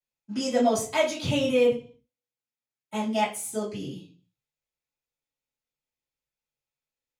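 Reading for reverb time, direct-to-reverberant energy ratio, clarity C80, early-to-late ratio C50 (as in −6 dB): 0.40 s, −14.5 dB, 14.0 dB, 8.5 dB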